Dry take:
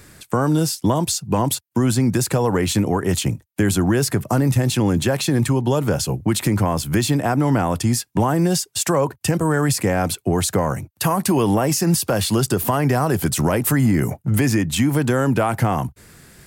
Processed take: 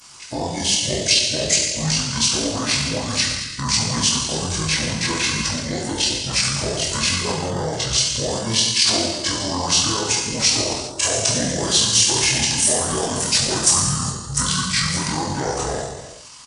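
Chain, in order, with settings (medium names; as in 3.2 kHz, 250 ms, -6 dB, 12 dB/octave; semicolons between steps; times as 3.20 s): short-time spectra conjugated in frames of 55 ms; tilt EQ +3.5 dB/octave; flange 1.4 Hz, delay 8.6 ms, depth 4.3 ms, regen -64%; gated-style reverb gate 440 ms falling, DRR -2 dB; pitch shift -8.5 st; trim +2.5 dB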